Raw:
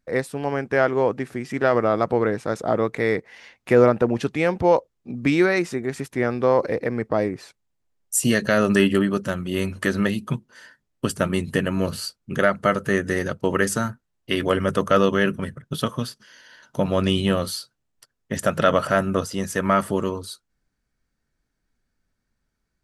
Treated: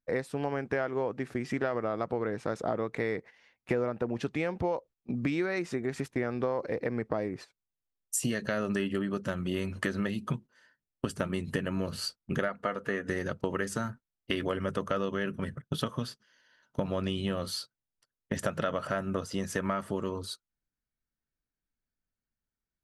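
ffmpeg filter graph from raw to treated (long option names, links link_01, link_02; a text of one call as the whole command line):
ffmpeg -i in.wav -filter_complex "[0:a]asettb=1/sr,asplit=3[link_01][link_02][link_03];[link_01]atrim=end=12.484[link_04];[link_02]atrim=start=12.48:end=13.09,asetpts=PTS-STARTPTS,afade=type=in:duration=0.004:curve=qsin,afade=type=out:start_time=0.606:duration=0.004:curve=qsin,bass=frequency=250:gain=-9,treble=frequency=4000:gain=-8,aecho=1:1:4.2:0.35,atrim=end_sample=26901[link_05];[link_03]atrim=start=13.086[link_06];[link_04][link_05]acrossfade=duration=0.004:curve1=hsin:curve2=qsin[link_07];[link_07][link_06]acrossfade=duration=0.004:curve1=qsin:curve2=hsin,agate=range=-16dB:threshold=-36dB:ratio=16:detection=peak,highshelf=frequency=9200:gain=-10.5,acompressor=threshold=-28dB:ratio=6" out.wav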